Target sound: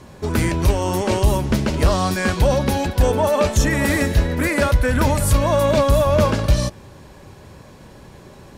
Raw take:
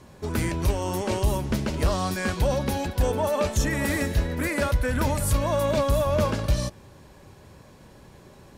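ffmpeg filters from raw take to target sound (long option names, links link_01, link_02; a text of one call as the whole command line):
ffmpeg -i in.wav -af "highshelf=frequency=10000:gain=-3.5,volume=7dB" out.wav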